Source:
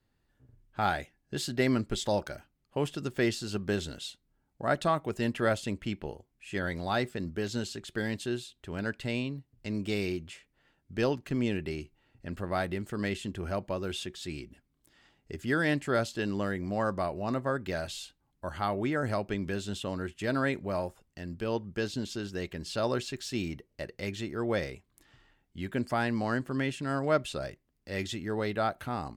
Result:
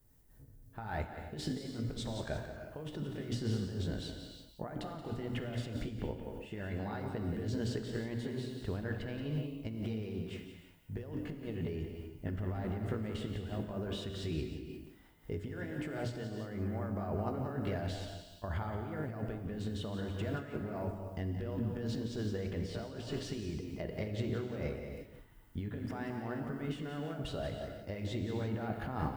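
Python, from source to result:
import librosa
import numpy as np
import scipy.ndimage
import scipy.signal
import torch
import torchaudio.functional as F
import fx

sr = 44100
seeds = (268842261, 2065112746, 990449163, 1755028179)

p1 = fx.pitch_heads(x, sr, semitones=1.0)
p2 = fx.lowpass(p1, sr, hz=1100.0, slope=6)
p3 = fx.low_shelf(p2, sr, hz=74.0, db=10.5)
p4 = fx.hum_notches(p3, sr, base_hz=60, count=5)
p5 = fx.over_compress(p4, sr, threshold_db=-39.0, ratio=-1.0)
p6 = fx.dmg_noise_colour(p5, sr, seeds[0], colour='violet', level_db=-73.0)
p7 = p6 + fx.echo_single(p6, sr, ms=177, db=-9.0, dry=0)
p8 = fx.rev_gated(p7, sr, seeds[1], gate_ms=380, shape='flat', drr_db=4.5)
p9 = fx.am_noise(p8, sr, seeds[2], hz=5.7, depth_pct=65)
y = p9 * librosa.db_to_amplitude(2.5)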